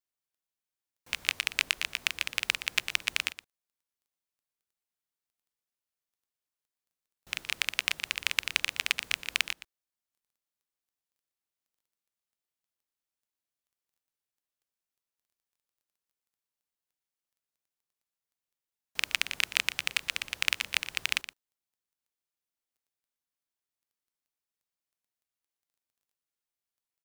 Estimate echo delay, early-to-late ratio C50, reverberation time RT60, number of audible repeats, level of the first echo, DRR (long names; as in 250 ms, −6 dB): 119 ms, no reverb audible, no reverb audible, 1, −13.5 dB, no reverb audible